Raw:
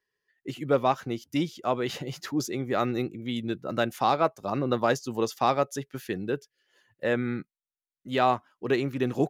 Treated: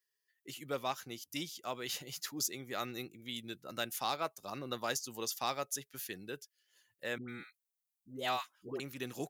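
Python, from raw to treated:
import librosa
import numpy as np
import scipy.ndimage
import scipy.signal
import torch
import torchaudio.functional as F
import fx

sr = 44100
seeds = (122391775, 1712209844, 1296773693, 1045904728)

y = librosa.effects.preemphasis(x, coef=0.9, zi=[0.0])
y = fx.dispersion(y, sr, late='highs', ms=107.0, hz=760.0, at=(7.18, 8.8))
y = y * 10.0 ** (3.5 / 20.0)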